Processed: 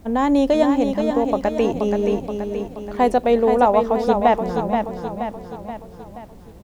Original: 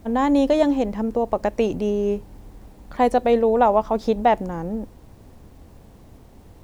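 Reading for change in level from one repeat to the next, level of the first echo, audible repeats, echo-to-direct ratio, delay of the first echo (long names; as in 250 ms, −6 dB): −5.5 dB, −6.0 dB, 5, −4.5 dB, 477 ms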